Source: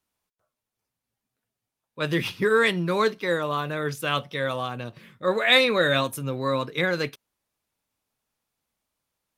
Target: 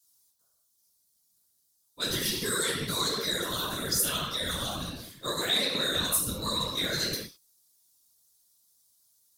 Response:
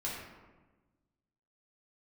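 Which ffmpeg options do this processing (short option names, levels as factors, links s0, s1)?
-filter_complex "[1:a]atrim=start_sample=2205,afade=t=out:st=0.27:d=0.01,atrim=end_sample=12348[s0];[0:a][s0]afir=irnorm=-1:irlink=0,afftfilt=real='hypot(re,im)*cos(2*PI*random(0))':imag='hypot(re,im)*sin(2*PI*random(1))':win_size=512:overlap=0.75,acrossover=split=430|1000|2700[s1][s2][s3][s4];[s1]acompressor=threshold=0.0251:ratio=4[s5];[s2]acompressor=threshold=0.00708:ratio=4[s6];[s3]acompressor=threshold=0.0224:ratio=4[s7];[s4]acompressor=threshold=0.00562:ratio=4[s8];[s5][s6][s7][s8]amix=inputs=4:normalize=0,aexciter=amount=14.4:drive=5.1:freq=3800,asplit=2[s9][s10];[s10]asoftclip=type=hard:threshold=0.0631,volume=0.355[s11];[s9][s11]amix=inputs=2:normalize=0,volume=0.631"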